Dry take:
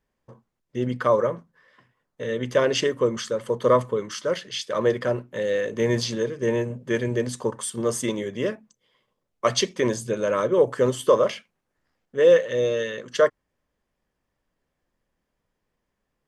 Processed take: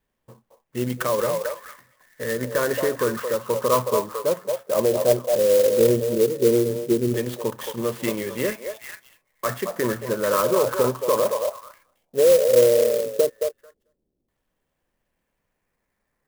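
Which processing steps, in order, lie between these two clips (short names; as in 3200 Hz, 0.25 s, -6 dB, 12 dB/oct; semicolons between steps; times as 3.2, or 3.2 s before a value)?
limiter -14.5 dBFS, peak gain reduction 8 dB; LFO low-pass saw down 0.14 Hz 330–3800 Hz; delay with a stepping band-pass 0.221 s, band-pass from 710 Hz, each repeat 1.4 oct, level -2 dB; vibrato 2.2 Hz 11 cents; clock jitter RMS 0.056 ms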